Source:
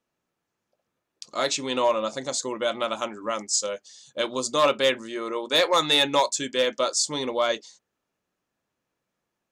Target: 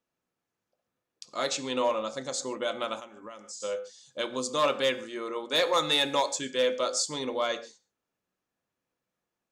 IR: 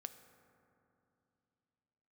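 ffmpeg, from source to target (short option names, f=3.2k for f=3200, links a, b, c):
-filter_complex "[1:a]atrim=start_sample=2205,atrim=end_sample=6615[a];[0:a][a]afir=irnorm=-1:irlink=0,asplit=3[b][c][d];[b]afade=t=out:st=2.99:d=0.02[e];[c]acompressor=threshold=-41dB:ratio=8,afade=t=in:st=2.99:d=0.02,afade=t=out:st=3.6:d=0.02[f];[d]afade=t=in:st=3.6:d=0.02[g];[e][f][g]amix=inputs=3:normalize=0"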